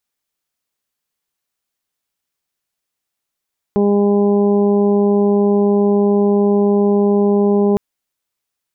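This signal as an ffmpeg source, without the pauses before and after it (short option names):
-f lavfi -i "aevalsrc='0.211*sin(2*PI*203*t)+0.211*sin(2*PI*406*t)+0.0531*sin(2*PI*609*t)+0.0501*sin(2*PI*812*t)+0.0224*sin(2*PI*1015*t)':d=4.01:s=44100"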